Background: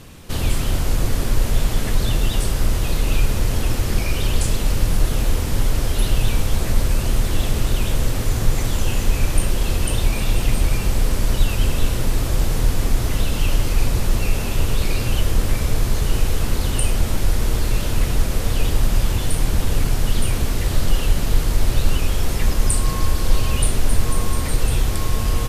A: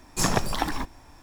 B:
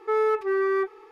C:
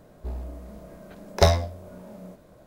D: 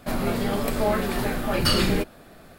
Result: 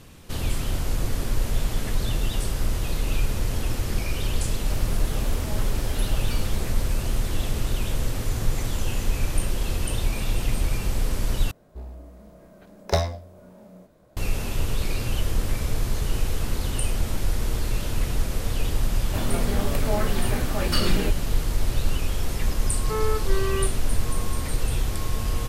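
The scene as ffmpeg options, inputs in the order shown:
ffmpeg -i bed.wav -i cue0.wav -i cue1.wav -i cue2.wav -i cue3.wav -filter_complex "[4:a]asplit=2[link_01][link_02];[0:a]volume=-6dB[link_03];[link_01]acompressor=threshold=-33dB:ratio=6:attack=3.2:release=140:knee=1:detection=peak[link_04];[link_03]asplit=2[link_05][link_06];[link_05]atrim=end=11.514[link_07];[3:a]atrim=end=2.66,asetpts=PTS-STARTPTS,volume=-4.5dB[link_08];[link_06]atrim=start=14.166[link_09];[link_04]atrim=end=2.58,asetpts=PTS-STARTPTS,volume=-2.5dB,afade=type=in:duration=0.004:curve=hsin,afade=type=out:start_time=2.576:duration=0.004:curve=hsin,adelay=205065S[link_10];[link_02]atrim=end=2.58,asetpts=PTS-STARTPTS,volume=-4dB,afade=type=in:duration=0.004:curve=hsin,afade=type=out:start_time=2.576:duration=0.004:curve=hsin,adelay=19070[link_11];[2:a]atrim=end=1.11,asetpts=PTS-STARTPTS,volume=-5dB,afade=type=in:duration=0.004:curve=hsin,afade=type=out:start_time=1.106:duration=0.004:curve=hsin,adelay=22820[link_12];[link_07][link_08]acrossfade=duration=0.004:curve1=hsin:curve2=hsin[link_13];[link_13][link_09]acrossfade=duration=0.004:curve1=hsin:curve2=hsin[link_14];[link_14][link_10][link_11][link_12]amix=inputs=4:normalize=0" out.wav

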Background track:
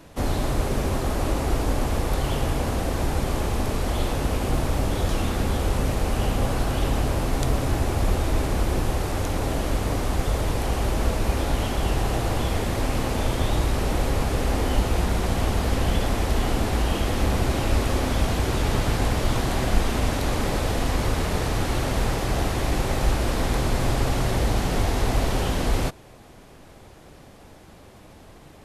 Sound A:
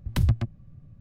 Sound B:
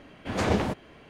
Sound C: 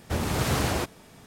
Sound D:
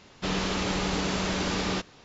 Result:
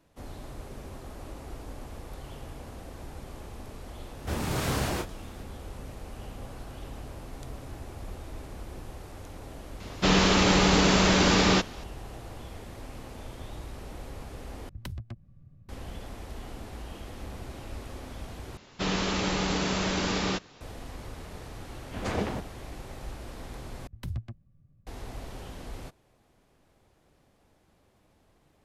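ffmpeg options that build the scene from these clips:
ffmpeg -i bed.wav -i cue0.wav -i cue1.wav -i cue2.wav -i cue3.wav -filter_complex "[4:a]asplit=2[link_01][link_02];[1:a]asplit=2[link_03][link_04];[0:a]volume=-18dB[link_05];[3:a]asplit=2[link_06][link_07];[link_07]adelay=29,volume=-6dB[link_08];[link_06][link_08]amix=inputs=2:normalize=0[link_09];[link_01]acontrast=87[link_10];[link_03]acompressor=threshold=-27dB:ratio=12:attack=3.4:release=346:knee=6:detection=peak[link_11];[link_05]asplit=4[link_12][link_13][link_14][link_15];[link_12]atrim=end=14.694[link_16];[link_11]atrim=end=1,asetpts=PTS-STARTPTS,volume=-5.5dB[link_17];[link_13]atrim=start=15.686:end=18.574[link_18];[link_02]atrim=end=2.04[link_19];[link_14]atrim=start=20.606:end=23.874[link_20];[link_04]atrim=end=1,asetpts=PTS-STARTPTS,volume=-13dB[link_21];[link_15]atrim=start=24.866[link_22];[link_09]atrim=end=1.26,asetpts=PTS-STARTPTS,volume=-4.5dB,afade=type=in:duration=0.004:curve=hsin,afade=type=out:start_time=1.256:duration=0.004:curve=hsin,adelay=183897S[link_23];[link_10]atrim=end=2.04,asetpts=PTS-STARTPTS,afade=type=in:duration=0.004:curve=hsin,afade=type=out:start_time=2.036:duration=0.004:curve=hsin,adelay=9800[link_24];[2:a]atrim=end=1.09,asetpts=PTS-STARTPTS,volume=-5.5dB,afade=type=in:duration=0.004:curve=hsin,afade=type=out:start_time=1.086:duration=0.004:curve=hsin,adelay=21670[link_25];[link_16][link_17]acrossfade=duration=0.004:curve1=hsin:curve2=hsin[link_26];[link_26][link_18]acrossfade=duration=0.004:curve1=hsin:curve2=hsin[link_27];[link_27][link_19]acrossfade=duration=0.004:curve1=hsin:curve2=hsin[link_28];[link_28][link_20]acrossfade=duration=0.004:curve1=hsin:curve2=hsin[link_29];[link_29][link_21]acrossfade=duration=0.004:curve1=hsin:curve2=hsin[link_30];[link_30][link_22]acrossfade=duration=0.004:curve1=hsin:curve2=hsin[link_31];[link_31][link_23][link_24][link_25]amix=inputs=4:normalize=0" out.wav

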